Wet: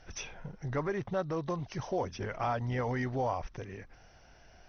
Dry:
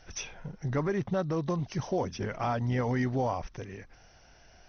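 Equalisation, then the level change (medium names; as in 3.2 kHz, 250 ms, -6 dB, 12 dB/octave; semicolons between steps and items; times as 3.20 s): dynamic bell 200 Hz, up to -7 dB, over -43 dBFS, Q 0.77; treble shelf 4.1 kHz -6.5 dB; 0.0 dB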